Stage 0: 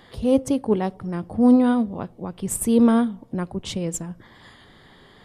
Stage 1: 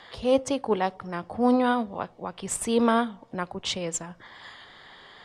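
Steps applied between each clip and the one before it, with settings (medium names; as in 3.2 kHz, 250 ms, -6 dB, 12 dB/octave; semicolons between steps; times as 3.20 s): three-band isolator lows -14 dB, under 560 Hz, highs -24 dB, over 7.7 kHz; trim +4.5 dB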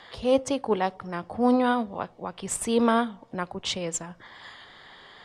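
no audible change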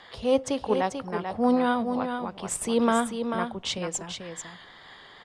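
delay 440 ms -7 dB; trim -1 dB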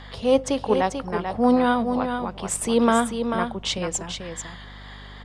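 hum 50 Hz, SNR 19 dB; trim +4 dB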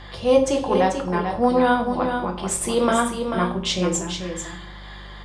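reverberation RT60 0.50 s, pre-delay 3 ms, DRR 1 dB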